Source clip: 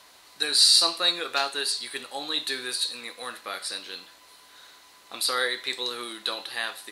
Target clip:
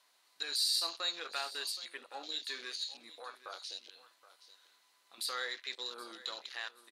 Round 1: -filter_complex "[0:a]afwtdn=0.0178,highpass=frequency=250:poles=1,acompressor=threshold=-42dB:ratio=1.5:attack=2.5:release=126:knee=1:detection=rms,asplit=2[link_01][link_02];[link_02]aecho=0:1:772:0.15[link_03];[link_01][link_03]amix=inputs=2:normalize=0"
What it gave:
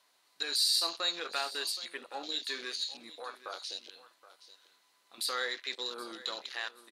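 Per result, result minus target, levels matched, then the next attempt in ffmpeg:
250 Hz band +4.0 dB; downward compressor: peak gain reduction −3.5 dB
-filter_complex "[0:a]afwtdn=0.0178,highpass=frequency=600:poles=1,acompressor=threshold=-42dB:ratio=1.5:attack=2.5:release=126:knee=1:detection=rms,asplit=2[link_01][link_02];[link_02]aecho=0:1:772:0.15[link_03];[link_01][link_03]amix=inputs=2:normalize=0"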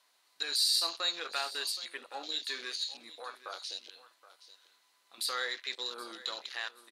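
downward compressor: peak gain reduction −3.5 dB
-filter_complex "[0:a]afwtdn=0.0178,highpass=frequency=600:poles=1,acompressor=threshold=-52.5dB:ratio=1.5:attack=2.5:release=126:knee=1:detection=rms,asplit=2[link_01][link_02];[link_02]aecho=0:1:772:0.15[link_03];[link_01][link_03]amix=inputs=2:normalize=0"

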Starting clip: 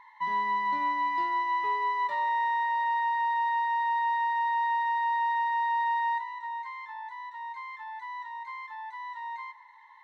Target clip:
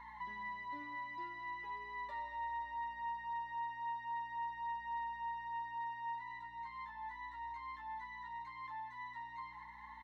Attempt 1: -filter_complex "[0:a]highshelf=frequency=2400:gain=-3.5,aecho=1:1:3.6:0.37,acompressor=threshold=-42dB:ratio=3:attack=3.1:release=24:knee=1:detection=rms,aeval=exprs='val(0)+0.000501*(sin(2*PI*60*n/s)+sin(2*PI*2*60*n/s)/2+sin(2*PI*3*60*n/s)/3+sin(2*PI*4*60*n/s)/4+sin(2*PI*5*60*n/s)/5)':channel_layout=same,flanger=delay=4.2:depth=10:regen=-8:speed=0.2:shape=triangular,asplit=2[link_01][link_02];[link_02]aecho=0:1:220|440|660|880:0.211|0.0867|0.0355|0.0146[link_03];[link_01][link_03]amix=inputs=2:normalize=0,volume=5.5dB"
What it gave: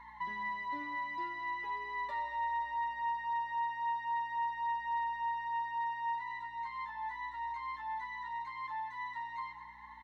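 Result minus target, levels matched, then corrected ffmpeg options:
downward compressor: peak gain reduction −6.5 dB
-filter_complex "[0:a]highshelf=frequency=2400:gain=-3.5,aecho=1:1:3.6:0.37,acompressor=threshold=-51.5dB:ratio=3:attack=3.1:release=24:knee=1:detection=rms,aeval=exprs='val(0)+0.000501*(sin(2*PI*60*n/s)+sin(2*PI*2*60*n/s)/2+sin(2*PI*3*60*n/s)/3+sin(2*PI*4*60*n/s)/4+sin(2*PI*5*60*n/s)/5)':channel_layout=same,flanger=delay=4.2:depth=10:regen=-8:speed=0.2:shape=triangular,asplit=2[link_01][link_02];[link_02]aecho=0:1:220|440|660|880:0.211|0.0867|0.0355|0.0146[link_03];[link_01][link_03]amix=inputs=2:normalize=0,volume=5.5dB"

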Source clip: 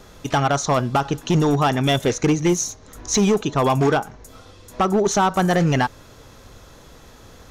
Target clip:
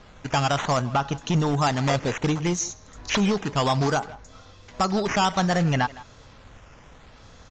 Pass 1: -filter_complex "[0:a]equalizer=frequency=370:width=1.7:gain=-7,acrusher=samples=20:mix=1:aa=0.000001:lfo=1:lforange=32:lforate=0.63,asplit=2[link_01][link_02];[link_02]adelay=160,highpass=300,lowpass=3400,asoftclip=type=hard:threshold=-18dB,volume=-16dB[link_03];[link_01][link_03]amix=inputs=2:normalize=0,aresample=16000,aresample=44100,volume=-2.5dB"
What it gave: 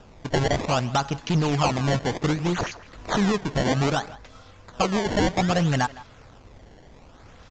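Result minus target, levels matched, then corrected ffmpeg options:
sample-and-hold swept by an LFO: distortion +8 dB
-filter_complex "[0:a]equalizer=frequency=370:width=1.7:gain=-7,acrusher=samples=6:mix=1:aa=0.000001:lfo=1:lforange=9.6:lforate=0.63,asplit=2[link_01][link_02];[link_02]adelay=160,highpass=300,lowpass=3400,asoftclip=type=hard:threshold=-18dB,volume=-16dB[link_03];[link_01][link_03]amix=inputs=2:normalize=0,aresample=16000,aresample=44100,volume=-2.5dB"

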